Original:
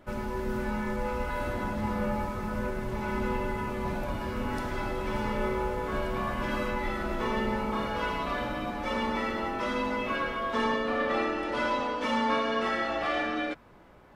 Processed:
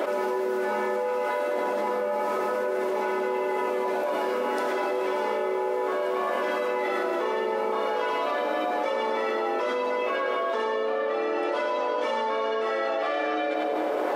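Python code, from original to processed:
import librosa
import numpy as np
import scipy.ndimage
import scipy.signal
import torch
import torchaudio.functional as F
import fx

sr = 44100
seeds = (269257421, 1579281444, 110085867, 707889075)

y = scipy.signal.sosfilt(scipy.signal.butter(4, 330.0, 'highpass', fs=sr, output='sos'), x)
y = fx.peak_eq(y, sr, hz=510.0, db=8.5, octaves=1.4)
y = fx.echo_split(y, sr, split_hz=790.0, low_ms=211, high_ms=93, feedback_pct=52, wet_db=-15)
y = fx.env_flatten(y, sr, amount_pct=100)
y = y * librosa.db_to_amplitude(-5.5)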